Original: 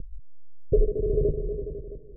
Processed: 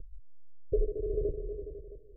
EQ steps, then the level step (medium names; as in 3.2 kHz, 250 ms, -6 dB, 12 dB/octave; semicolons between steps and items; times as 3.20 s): dynamic bell 300 Hz, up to +5 dB, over -44 dBFS, Q 4.1; static phaser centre 480 Hz, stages 4; -7.5 dB